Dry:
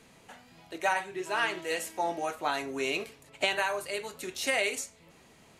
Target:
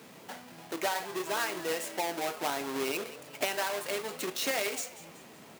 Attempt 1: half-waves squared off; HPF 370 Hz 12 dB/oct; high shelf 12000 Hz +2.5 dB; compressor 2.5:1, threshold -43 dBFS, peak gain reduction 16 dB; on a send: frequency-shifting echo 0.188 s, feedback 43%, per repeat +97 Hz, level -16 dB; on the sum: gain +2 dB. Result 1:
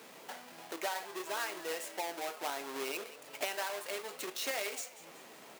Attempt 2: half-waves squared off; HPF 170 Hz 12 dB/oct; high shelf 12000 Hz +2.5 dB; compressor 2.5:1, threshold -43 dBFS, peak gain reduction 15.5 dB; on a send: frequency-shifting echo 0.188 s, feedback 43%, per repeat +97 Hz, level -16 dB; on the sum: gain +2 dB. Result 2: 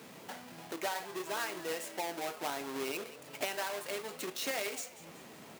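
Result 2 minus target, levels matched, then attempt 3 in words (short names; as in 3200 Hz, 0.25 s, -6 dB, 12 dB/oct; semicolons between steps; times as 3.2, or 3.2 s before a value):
compressor: peak gain reduction +5 dB
half-waves squared off; HPF 170 Hz 12 dB/oct; high shelf 12000 Hz +2.5 dB; compressor 2.5:1, threshold -35 dBFS, peak gain reduction 10.5 dB; on a send: frequency-shifting echo 0.188 s, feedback 43%, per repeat +97 Hz, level -16 dB; on the sum: gain +2 dB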